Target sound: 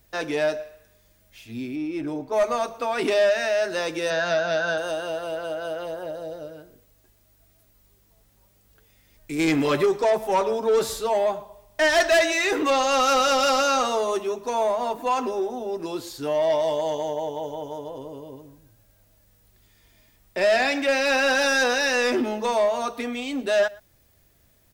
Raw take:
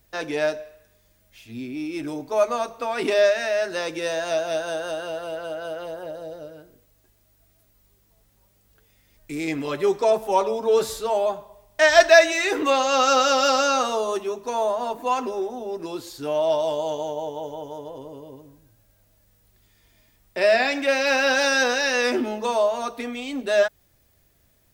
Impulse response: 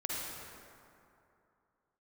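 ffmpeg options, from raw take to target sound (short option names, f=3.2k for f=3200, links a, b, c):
-filter_complex "[0:a]asplit=3[a][b][c];[a]afade=t=out:st=1.75:d=0.02[d];[b]highshelf=f=3k:g=-12,afade=t=in:st=1.75:d=0.02,afade=t=out:st=2.32:d=0.02[e];[c]afade=t=in:st=2.32:d=0.02[f];[d][e][f]amix=inputs=3:normalize=0,asplit=3[g][h][i];[g]afade=t=out:st=9.38:d=0.02[j];[h]acontrast=68,afade=t=in:st=9.38:d=0.02,afade=t=out:st=9.84:d=0.02[k];[i]afade=t=in:st=9.84:d=0.02[l];[j][k][l]amix=inputs=3:normalize=0,asoftclip=type=tanh:threshold=-16dB,asettb=1/sr,asplit=3[m][n][o];[m]atrim=end=4.104[p];[n]atrim=start=4.1:end=4.78,asetpts=PTS-STARTPTS,afade=t=in:d=0.004:c=qsin,afade=t=out:st=0.676:d=0.004:c=qsin,highpass=110,equalizer=f=180:t=q:w=4:g=10,equalizer=f=340:t=q:w=4:g=-3,equalizer=f=1.5k:t=q:w=4:g=10,equalizer=f=4.4k:t=q:w=4:g=5,lowpass=f=5.9k:w=0.5412,lowpass=f=5.9k:w=1.3066[q];[o]atrim=start=4.776[r];[p][q]acrossfade=d=0.004:c1=hsin:c2=qsin[s];[s][r]acrossfade=d=0.004:c1=qsin:c2=hsin,asplit=2[t][u];[u]adelay=116.6,volume=-23dB,highshelf=f=4k:g=-2.62[v];[t][v]amix=inputs=2:normalize=0,volume=1.5dB"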